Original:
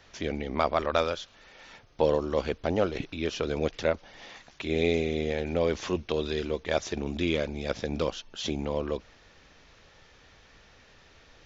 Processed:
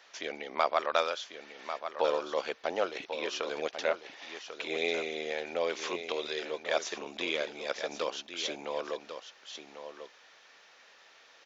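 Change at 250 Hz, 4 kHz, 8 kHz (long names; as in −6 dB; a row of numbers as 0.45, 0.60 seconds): −12.5 dB, +0.5 dB, can't be measured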